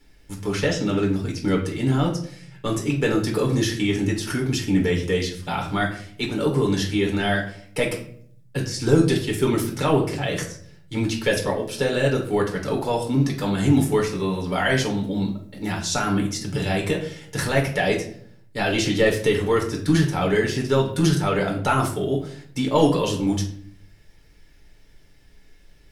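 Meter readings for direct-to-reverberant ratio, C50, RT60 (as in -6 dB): -0.5 dB, 8.5 dB, 0.60 s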